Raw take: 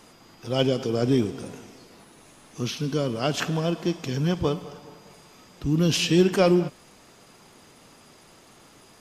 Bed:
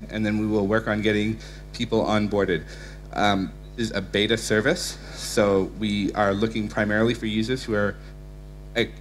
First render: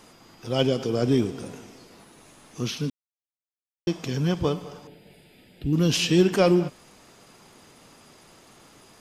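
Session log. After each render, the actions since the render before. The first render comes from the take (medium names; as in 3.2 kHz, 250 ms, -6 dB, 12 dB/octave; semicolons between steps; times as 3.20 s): 2.90–3.87 s: mute; 4.87–5.73 s: static phaser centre 2.7 kHz, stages 4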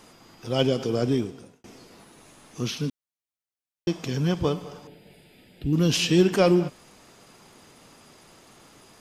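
0.96–1.64 s: fade out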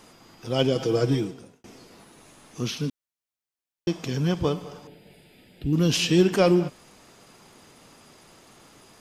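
0.75–1.34 s: comb 6.2 ms, depth 81%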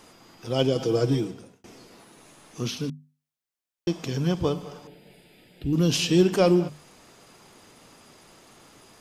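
hum notches 50/100/150/200/250 Hz; dynamic bell 1.9 kHz, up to -4 dB, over -41 dBFS, Q 1.2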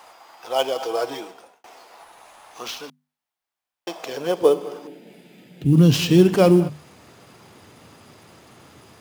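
high-pass sweep 780 Hz -> 87 Hz, 3.84–6.20 s; in parallel at -4 dB: sample-rate reducer 10 kHz, jitter 20%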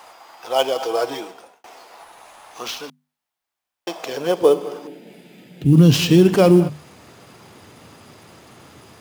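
trim +3 dB; peak limiter -3 dBFS, peak gain reduction 3 dB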